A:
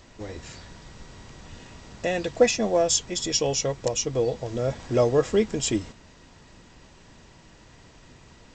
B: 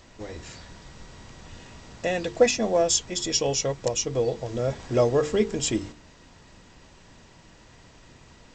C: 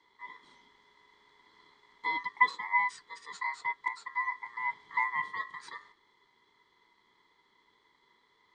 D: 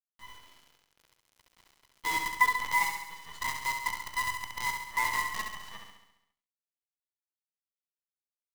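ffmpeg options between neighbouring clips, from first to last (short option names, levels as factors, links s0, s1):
-af "bandreject=f=50:t=h:w=6,bandreject=f=100:t=h:w=6,bandreject=f=150:t=h:w=6,bandreject=f=200:t=h:w=6,bandreject=f=250:t=h:w=6,bandreject=f=300:t=h:w=6,bandreject=f=350:t=h:w=6,bandreject=f=400:t=h:w=6,bandreject=f=450:t=h:w=6"
-filter_complex "[0:a]asplit=3[s0][s1][s2];[s0]bandpass=f=530:t=q:w=8,volume=1[s3];[s1]bandpass=f=1840:t=q:w=8,volume=0.501[s4];[s2]bandpass=f=2480:t=q:w=8,volume=0.355[s5];[s3][s4][s5]amix=inputs=3:normalize=0,aeval=exprs='val(0)*sin(2*PI*1500*n/s)':c=same"
-filter_complex "[0:a]acrusher=bits=6:dc=4:mix=0:aa=0.000001,asplit=2[s0][s1];[s1]aecho=0:1:68|136|204|272|340|408|476|544:0.531|0.313|0.185|0.109|0.0643|0.038|0.0224|0.0132[s2];[s0][s2]amix=inputs=2:normalize=0"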